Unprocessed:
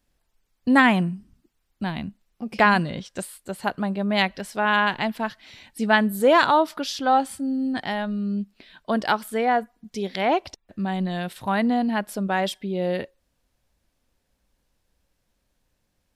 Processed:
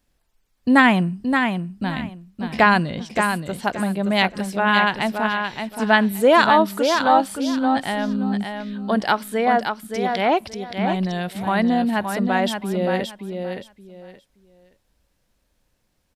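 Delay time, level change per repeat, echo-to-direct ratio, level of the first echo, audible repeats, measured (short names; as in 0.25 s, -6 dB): 0.573 s, -13.0 dB, -6.0 dB, -6.0 dB, 3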